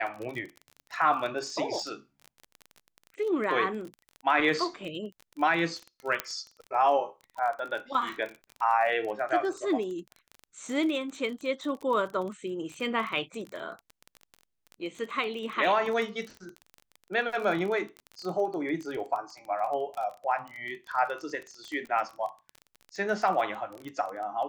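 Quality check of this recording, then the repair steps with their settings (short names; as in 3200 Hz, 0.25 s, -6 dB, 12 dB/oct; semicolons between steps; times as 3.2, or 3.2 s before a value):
crackle 24/s -34 dBFS
6.2 pop -11 dBFS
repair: de-click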